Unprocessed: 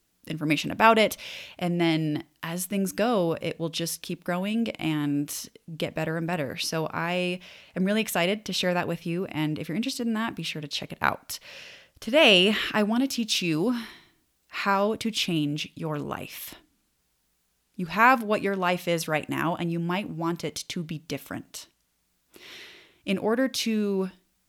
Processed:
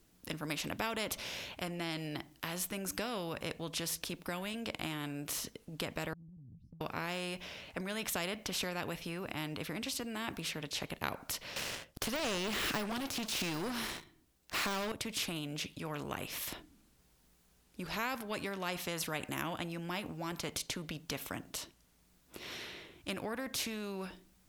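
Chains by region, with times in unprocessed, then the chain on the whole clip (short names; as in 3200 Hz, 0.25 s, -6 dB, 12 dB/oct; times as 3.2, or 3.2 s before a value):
6.13–6.81 inverse Chebyshev low-pass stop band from 500 Hz, stop band 60 dB + compressor 5:1, threshold -51 dBFS
11.56–14.92 de-esser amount 90% + sample leveller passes 3
whole clip: tilt shelf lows +3.5 dB, about 800 Hz; compressor 2.5:1, threshold -23 dBFS; spectral compressor 2:1; gain -7 dB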